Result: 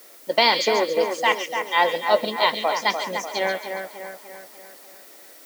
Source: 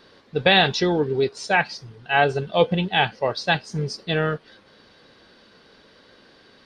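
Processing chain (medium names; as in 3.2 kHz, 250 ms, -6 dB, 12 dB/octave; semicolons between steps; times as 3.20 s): tape speed +22%; high-pass 290 Hz 24 dB/octave; treble shelf 6.4 kHz -8 dB; added noise blue -49 dBFS; two-band feedback delay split 2.3 kHz, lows 296 ms, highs 138 ms, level -6.5 dB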